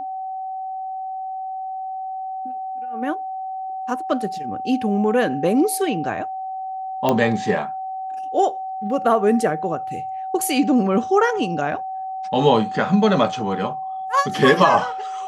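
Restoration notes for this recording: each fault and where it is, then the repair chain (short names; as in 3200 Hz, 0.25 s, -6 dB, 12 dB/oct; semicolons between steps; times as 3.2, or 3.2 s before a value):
tone 760 Hz -26 dBFS
7.09 pop -6 dBFS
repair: de-click; notch 760 Hz, Q 30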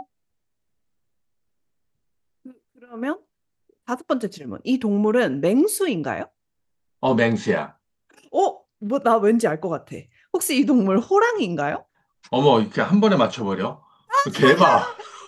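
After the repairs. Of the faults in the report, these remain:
none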